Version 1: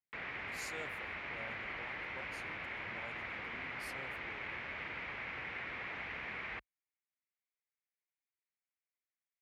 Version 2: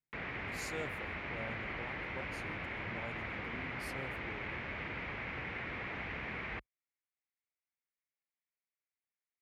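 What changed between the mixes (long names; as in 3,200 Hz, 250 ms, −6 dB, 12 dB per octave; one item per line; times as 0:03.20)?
speech: send +8.0 dB
master: add low-shelf EQ 470 Hz +10 dB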